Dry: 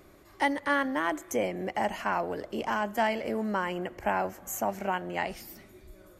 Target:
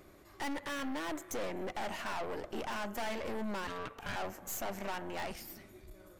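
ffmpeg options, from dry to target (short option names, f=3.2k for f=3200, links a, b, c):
-filter_complex "[0:a]asplit=2[a][b];[b]acrusher=bits=2:mix=0:aa=0.5,volume=-5dB[c];[a][c]amix=inputs=2:normalize=0,asettb=1/sr,asplit=3[d][e][f];[d]atrim=end=3.674[g];[e]atrim=start=3.67:end=4.16,asetpts=PTS-STARTPTS,afade=t=in:d=0.004:c=qsin,afade=t=out:st=0.486:d=0.004:c=qsin,aeval=exprs='val(0)*sin(2*PI*800*n/s)':c=same[h];[f]atrim=start=4.156[i];[g][h]acrossfade=d=0.004:c1=hsin:c2=qsin[j];[j][i]acrossfade=d=0.004:c1=qsin:c2=hsin,aeval=exprs='(tanh(70.8*val(0)+0.7)-tanh(0.7))/70.8':c=same,volume=1.5dB"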